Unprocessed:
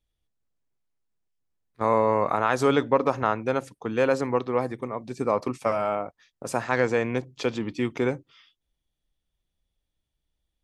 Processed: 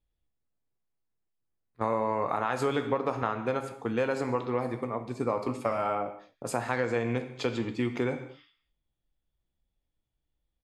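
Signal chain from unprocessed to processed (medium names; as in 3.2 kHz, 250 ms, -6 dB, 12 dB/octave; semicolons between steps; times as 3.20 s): band-stop 5.8 kHz, Q 6.9; doubling 17 ms -13 dB; gated-style reverb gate 270 ms falling, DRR 8 dB; compression 4:1, threshold -23 dBFS, peak gain reduction 7.5 dB; tape noise reduction on one side only decoder only; trim -1.5 dB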